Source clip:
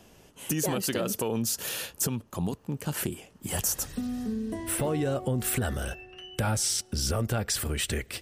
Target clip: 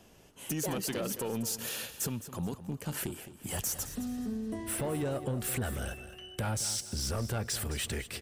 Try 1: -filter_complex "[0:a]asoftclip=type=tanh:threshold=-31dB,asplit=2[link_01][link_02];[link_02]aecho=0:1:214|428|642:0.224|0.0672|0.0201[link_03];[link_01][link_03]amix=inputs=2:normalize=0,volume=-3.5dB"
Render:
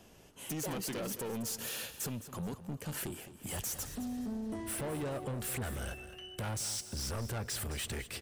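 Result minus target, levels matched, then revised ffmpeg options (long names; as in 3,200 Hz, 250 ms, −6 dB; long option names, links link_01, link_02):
soft clipping: distortion +8 dB
-filter_complex "[0:a]asoftclip=type=tanh:threshold=-23dB,asplit=2[link_01][link_02];[link_02]aecho=0:1:214|428|642:0.224|0.0672|0.0201[link_03];[link_01][link_03]amix=inputs=2:normalize=0,volume=-3.5dB"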